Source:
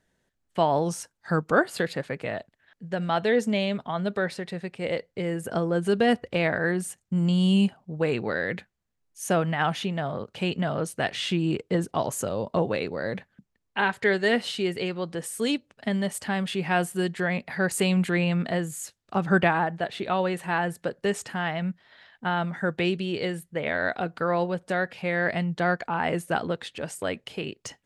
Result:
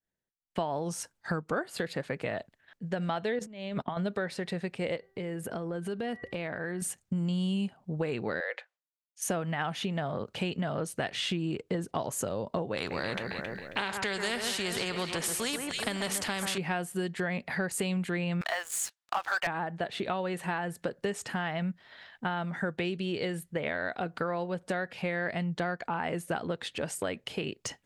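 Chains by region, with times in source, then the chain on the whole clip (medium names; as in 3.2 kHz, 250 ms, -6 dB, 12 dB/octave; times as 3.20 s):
3.39–3.97 s: gate -40 dBFS, range -18 dB + treble shelf 8.1 kHz -10.5 dB + compressor with a negative ratio -33 dBFS, ratio -0.5
4.96–6.82 s: peaking EQ 7.1 kHz -4.5 dB 0.86 oct + de-hum 387.6 Hz, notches 5 + compression 3:1, threshold -37 dBFS
8.40–9.22 s: elliptic high-pass 510 Hz, stop band 60 dB + distance through air 83 m
12.77–16.58 s: echo whose repeats swap between lows and highs 135 ms, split 1.8 kHz, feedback 55%, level -10 dB + spectrum-flattening compressor 2:1
18.41–19.47 s: high-pass 770 Hz 24 dB/octave + treble shelf 7.8 kHz -7 dB + waveshaping leveller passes 3
whole clip: compression, threshold -31 dBFS; expander -59 dBFS; trim +2 dB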